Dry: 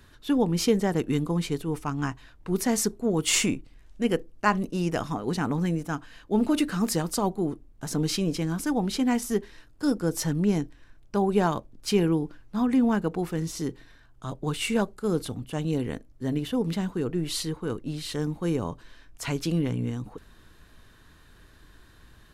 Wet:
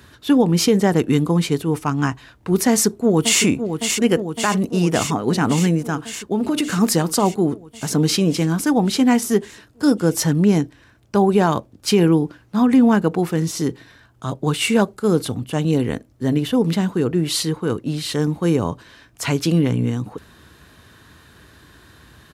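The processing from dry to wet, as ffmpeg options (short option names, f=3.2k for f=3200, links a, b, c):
-filter_complex "[0:a]asplit=2[a][b];[b]afade=t=in:st=2.69:d=0.01,afade=t=out:st=3.42:d=0.01,aecho=0:1:560|1120|1680|2240|2800|3360|3920|4480|5040|5600|6160|6720:0.398107|0.29858|0.223935|0.167951|0.125964|0.0944727|0.0708545|0.0531409|0.0398557|0.0298918|0.0224188|0.0168141[c];[a][c]amix=inputs=2:normalize=0,asettb=1/sr,asplit=3[d][e][f];[d]atrim=end=5.874[g];[e]atrim=start=5.87:end=6.78,asetpts=PTS-STARTPTS,afade=t=in:d=0.004:c=qsin,afade=t=out:st=0.906:d=0.004:c=qsin,acompressor=threshold=-25dB:ratio=6:attack=3.2:release=140:knee=1:detection=peak[h];[f]atrim=start=6.776[i];[g][h]acrossfade=d=0.004:c1=hsin:c2=qsin[j];[j][i]acrossfade=d=0.004:c1=qsin:c2=hsin,highpass=f=66:w=0.5412,highpass=f=66:w=1.3066,alimiter=level_in=14dB:limit=-1dB:release=50:level=0:latency=1,volume=-5dB"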